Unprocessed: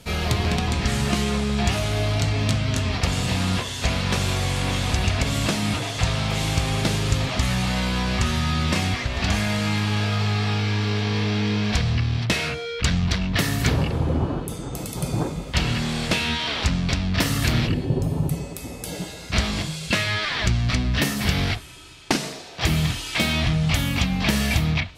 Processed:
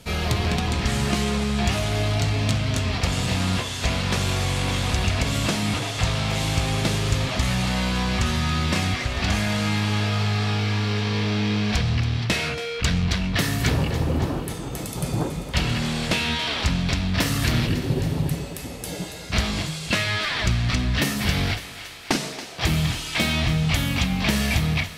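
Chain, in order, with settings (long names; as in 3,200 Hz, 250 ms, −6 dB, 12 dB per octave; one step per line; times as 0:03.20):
in parallel at −5 dB: asymmetric clip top −21 dBFS
on the sum: feedback echo with a high-pass in the loop 279 ms, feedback 75%, high-pass 420 Hz, level −13 dB
level −4 dB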